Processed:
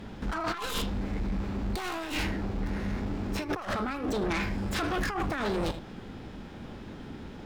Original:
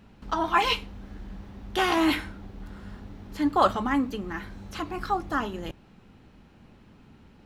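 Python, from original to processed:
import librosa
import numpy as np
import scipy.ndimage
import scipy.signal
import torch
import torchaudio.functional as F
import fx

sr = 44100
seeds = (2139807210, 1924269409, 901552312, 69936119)

p1 = fx.tracing_dist(x, sr, depth_ms=0.24)
p2 = fx.high_shelf(p1, sr, hz=3900.0, db=-5.5)
p3 = p2 + fx.room_early_taps(p2, sr, ms=(41, 79), db=(-17.0, -17.5), dry=0)
p4 = fx.over_compress(p3, sr, threshold_db=-34.0, ratio=-1.0)
p5 = fx.fold_sine(p4, sr, drive_db=13, ceiling_db=-16.5)
p6 = p4 + (p5 * librosa.db_to_amplitude(-11.0))
p7 = fx.formant_shift(p6, sr, semitones=4)
y = p7 * librosa.db_to_amplitude(-4.0)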